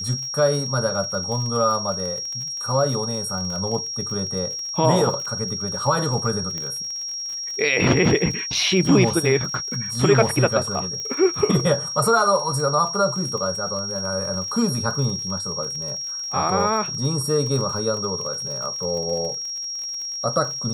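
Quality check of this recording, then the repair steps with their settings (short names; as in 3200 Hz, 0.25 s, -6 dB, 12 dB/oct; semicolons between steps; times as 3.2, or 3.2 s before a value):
crackle 52/s -30 dBFS
tone 5600 Hz -27 dBFS
6.58 pop -16 dBFS
11 pop -18 dBFS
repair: de-click; notch 5600 Hz, Q 30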